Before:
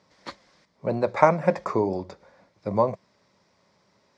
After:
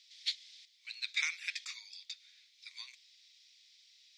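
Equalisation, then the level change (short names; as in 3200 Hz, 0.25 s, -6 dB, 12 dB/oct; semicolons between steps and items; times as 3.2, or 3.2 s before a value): steep high-pass 2400 Hz 36 dB/oct; bell 3600 Hz +8.5 dB 0.55 oct; +5.5 dB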